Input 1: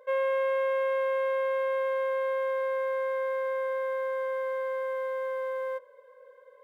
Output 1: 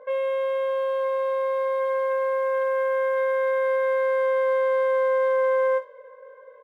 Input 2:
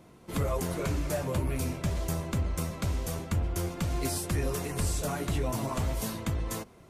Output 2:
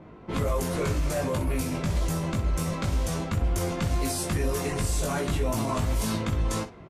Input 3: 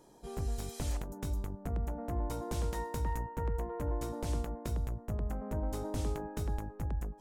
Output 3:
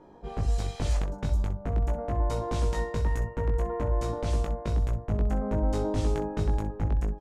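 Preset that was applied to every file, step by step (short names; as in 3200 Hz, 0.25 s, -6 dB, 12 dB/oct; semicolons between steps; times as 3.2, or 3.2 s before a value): low-pass opened by the level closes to 1900 Hz, open at -26 dBFS; limiter -27.5 dBFS; early reflections 19 ms -3.5 dB, 63 ms -12 dB; gain +6.5 dB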